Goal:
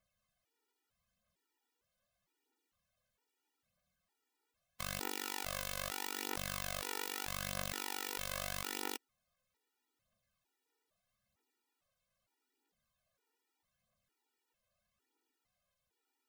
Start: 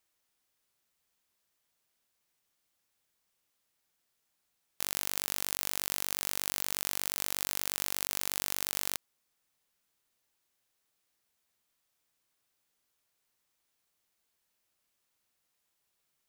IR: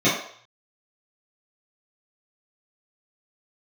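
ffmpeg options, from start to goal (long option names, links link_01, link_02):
-filter_complex "[0:a]aphaser=in_gain=1:out_gain=1:delay=2.3:decay=0.42:speed=0.79:type=triangular,asplit=2[link_01][link_02];[link_02]adynamicsmooth=sensitivity=5:basefreq=1100,volume=-8dB[link_03];[link_01][link_03]amix=inputs=2:normalize=0,highshelf=frequency=3400:gain=-10.5,afftfilt=real='re*gt(sin(2*PI*1.1*pts/sr)*(1-2*mod(floor(b*sr/1024/250),2)),0)':imag='im*gt(sin(2*PI*1.1*pts/sr)*(1-2*mod(floor(b*sr/1024/250),2)),0)':win_size=1024:overlap=0.75,volume=2.5dB"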